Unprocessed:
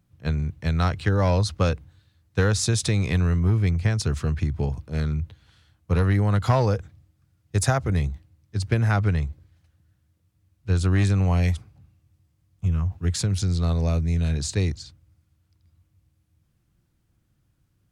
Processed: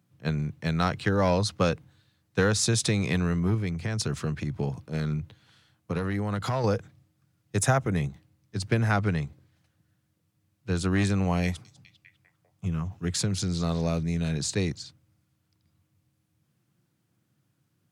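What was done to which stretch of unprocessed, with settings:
3.54–6.64 s: compression, threshold -21 dBFS
7.57–8.10 s: peaking EQ 4.5 kHz -11.5 dB 0.27 oct
11.45–14.03 s: repeats whose band climbs or falls 199 ms, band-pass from 5.6 kHz, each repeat -0.7 oct, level -11.5 dB
whole clip: high-pass 120 Hz 24 dB/octave

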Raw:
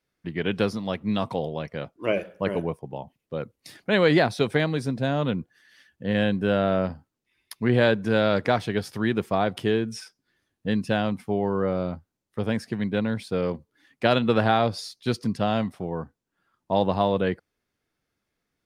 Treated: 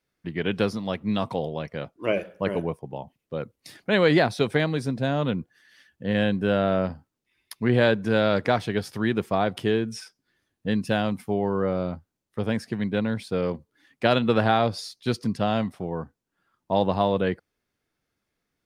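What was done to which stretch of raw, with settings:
10.85–11.34 s: treble shelf 9.6 kHz +10 dB

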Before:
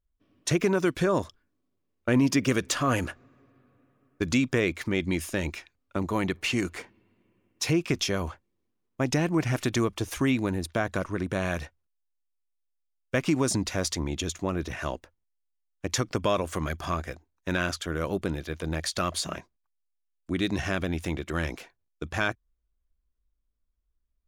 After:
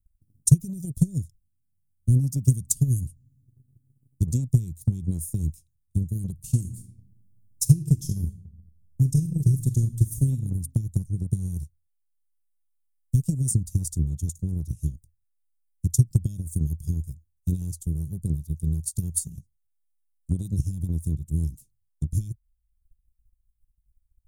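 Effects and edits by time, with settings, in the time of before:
6.32–10.35 s: reverb throw, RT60 0.9 s, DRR 5.5 dB
whole clip: Chebyshev band-stop 140–8800 Hz, order 3; transient shaper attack +10 dB, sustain -2 dB; trim +6.5 dB

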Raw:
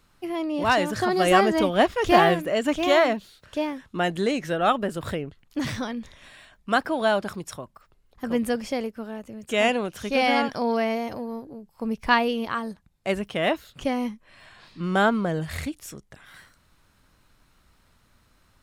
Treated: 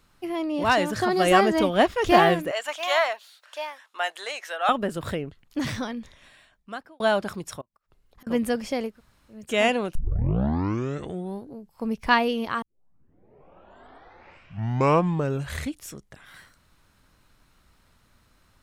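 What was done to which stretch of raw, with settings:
2.51–4.69 s: high-pass 690 Hz 24 dB/octave
5.76–7.00 s: fade out
7.61–8.27 s: inverted gate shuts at -37 dBFS, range -29 dB
8.93–9.35 s: room tone, crossfade 0.16 s
9.95 s: tape start 1.61 s
12.62 s: tape start 3.15 s

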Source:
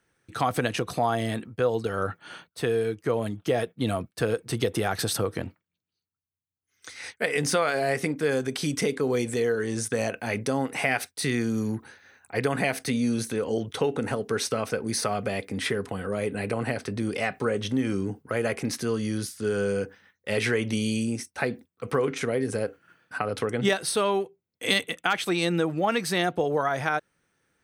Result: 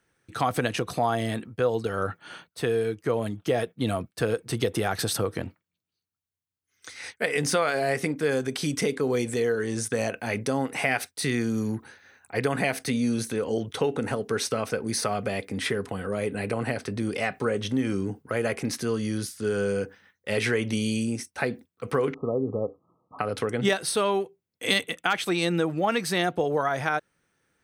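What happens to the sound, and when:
22.14–23.19 s: brick-wall FIR low-pass 1.3 kHz

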